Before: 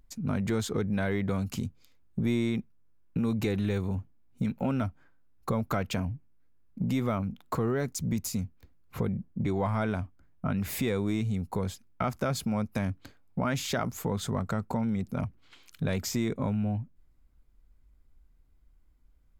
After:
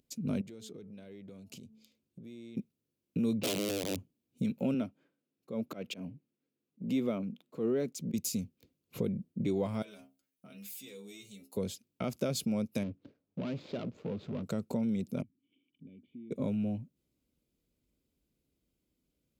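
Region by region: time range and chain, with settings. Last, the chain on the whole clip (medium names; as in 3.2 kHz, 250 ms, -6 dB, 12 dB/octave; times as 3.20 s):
0.41–2.57 s: treble shelf 8.5 kHz -4 dB + de-hum 218.9 Hz, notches 6 + compression 16:1, threshold -42 dBFS
3.38–3.98 s: distance through air 290 m + integer overflow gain 24.5 dB
4.74–8.14 s: high-pass 190 Hz + tone controls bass +2 dB, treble -9 dB + slow attack 132 ms
9.82–11.57 s: tilt EQ +3.5 dB/octave + inharmonic resonator 66 Hz, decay 0.31 s, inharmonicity 0.002 + compression 4:1, threshold -44 dBFS
12.83–14.43 s: median filter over 15 samples + hard clipper -29.5 dBFS + distance through air 210 m
15.22–16.31 s: treble shelf 2.7 kHz -10 dB + compression 2:1, threshold -46 dBFS + cascade formant filter i
whole clip: high-pass 180 Hz 12 dB/octave; high-order bell 1.2 kHz -13 dB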